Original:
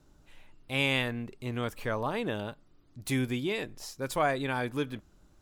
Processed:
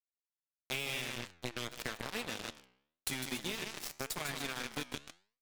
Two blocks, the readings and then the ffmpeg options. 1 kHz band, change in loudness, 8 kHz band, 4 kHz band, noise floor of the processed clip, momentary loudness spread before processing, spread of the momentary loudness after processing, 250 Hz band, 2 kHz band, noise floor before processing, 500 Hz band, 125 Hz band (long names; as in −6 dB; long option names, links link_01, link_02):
−11.0 dB, −7.5 dB, +3.0 dB, −2.5 dB, below −85 dBFS, 11 LU, 6 LU, −12.0 dB, −6.5 dB, −62 dBFS, −12.5 dB, −13.0 dB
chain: -filter_complex "[0:a]acrossover=split=250|1800[link_01][link_02][link_03];[link_01]acompressor=threshold=-40dB:ratio=4[link_04];[link_02]acompressor=threshold=-45dB:ratio=4[link_05];[link_03]acompressor=threshold=-36dB:ratio=4[link_06];[link_04][link_05][link_06]amix=inputs=3:normalize=0,aeval=exprs='sgn(val(0))*max(abs(val(0))-0.00355,0)':channel_layout=same,equalizer=frequency=15000:width_type=o:width=2.8:gain=4.5,asplit=2[link_07][link_08];[link_08]aecho=0:1:151.6|279.9:0.562|0.316[link_09];[link_07][link_09]amix=inputs=2:normalize=0,flanger=delay=3.9:depth=1.3:regen=-26:speed=0.4:shape=sinusoidal,acrusher=bits=5:mix=0:aa=0.5,flanger=delay=6.7:depth=9.7:regen=86:speed=0.92:shape=triangular,acompressor=threshold=-49dB:ratio=6,volume=15dB"